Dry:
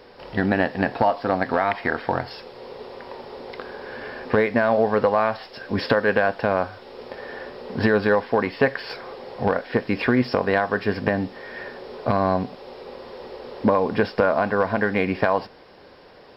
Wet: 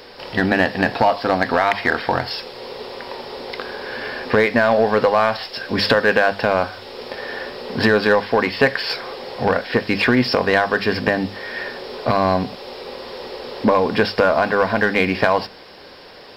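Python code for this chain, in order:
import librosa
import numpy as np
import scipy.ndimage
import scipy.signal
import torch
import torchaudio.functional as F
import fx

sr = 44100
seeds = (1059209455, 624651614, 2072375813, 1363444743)

p1 = fx.high_shelf(x, sr, hz=2400.0, db=11.0)
p2 = fx.hum_notches(p1, sr, base_hz=50, count=4)
p3 = 10.0 ** (-18.0 / 20.0) * np.tanh(p2 / 10.0 ** (-18.0 / 20.0))
y = p2 + (p3 * librosa.db_to_amplitude(-3.5))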